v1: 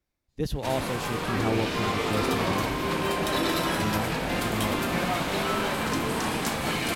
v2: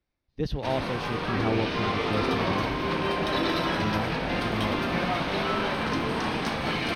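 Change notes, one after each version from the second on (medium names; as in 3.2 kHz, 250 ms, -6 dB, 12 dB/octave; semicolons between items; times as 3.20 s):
master: add Savitzky-Golay filter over 15 samples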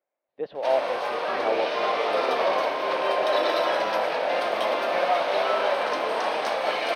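speech: add distance through air 490 m; master: add resonant high-pass 590 Hz, resonance Q 3.6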